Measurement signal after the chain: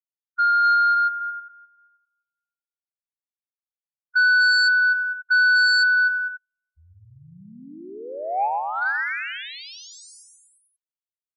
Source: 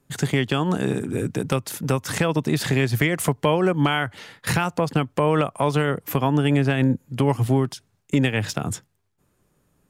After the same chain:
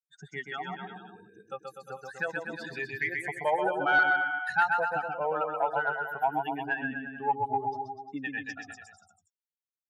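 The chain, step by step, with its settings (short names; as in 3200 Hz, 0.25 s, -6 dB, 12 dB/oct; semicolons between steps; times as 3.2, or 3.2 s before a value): per-bin expansion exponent 3; double band-pass 1100 Hz, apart 0.85 oct; bouncing-ball echo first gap 0.13 s, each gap 0.9×, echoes 5; sine folder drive 6 dB, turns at -14.5 dBFS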